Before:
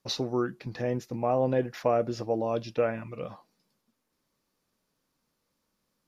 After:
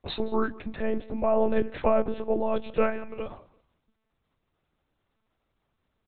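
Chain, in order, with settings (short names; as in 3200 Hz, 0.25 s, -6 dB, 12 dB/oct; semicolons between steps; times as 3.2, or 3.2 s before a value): feedback echo 0.17 s, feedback 26%, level -20.5 dB; monotone LPC vocoder at 8 kHz 220 Hz; gain +3 dB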